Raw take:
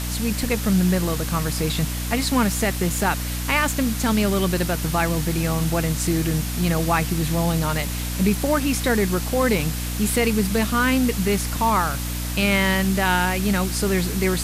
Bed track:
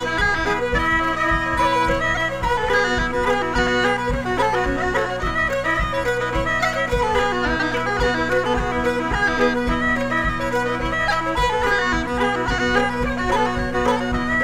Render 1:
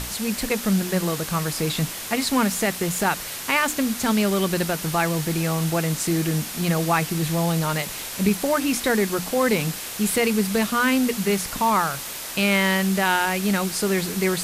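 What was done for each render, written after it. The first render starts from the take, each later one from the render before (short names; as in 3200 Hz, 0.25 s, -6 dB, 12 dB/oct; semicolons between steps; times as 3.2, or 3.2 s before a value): notches 60/120/180/240/300 Hz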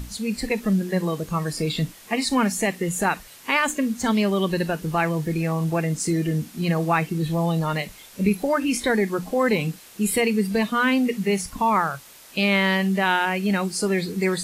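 noise print and reduce 14 dB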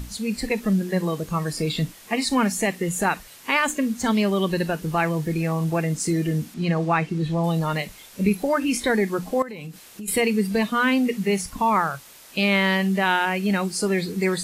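6.54–7.44 air absorption 65 m; 9.42–10.08 compressor 8:1, threshold -32 dBFS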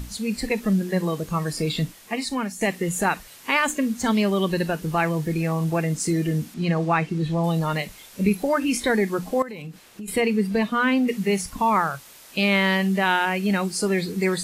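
1.77–2.61 fade out, to -10 dB; 9.62–11.08 high shelf 4500 Hz -8.5 dB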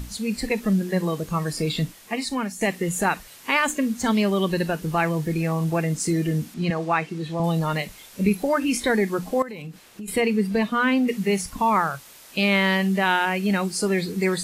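6.7–7.4 HPF 320 Hz 6 dB/oct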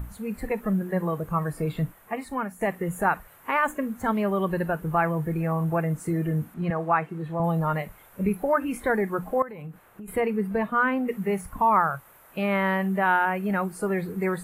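EQ curve 140 Hz 0 dB, 240 Hz -7 dB, 650 Hz 0 dB, 1400 Hz +1 dB, 5100 Hz -26 dB, 13000 Hz -4 dB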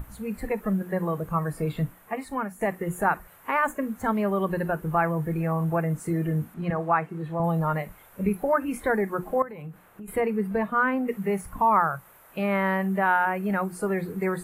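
notches 60/120/180/240/300/360 Hz; dynamic EQ 3200 Hz, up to -5 dB, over -44 dBFS, Q 1.8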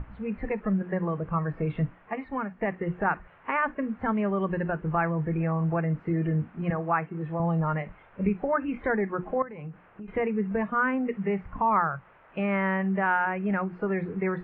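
steep low-pass 2900 Hz 36 dB/oct; dynamic EQ 730 Hz, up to -4 dB, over -31 dBFS, Q 0.74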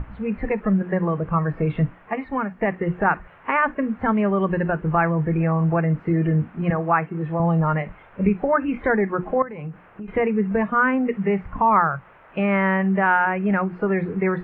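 gain +6.5 dB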